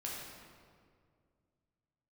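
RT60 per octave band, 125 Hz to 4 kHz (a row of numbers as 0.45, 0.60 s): 2.9, 2.6, 2.3, 1.9, 1.6, 1.3 s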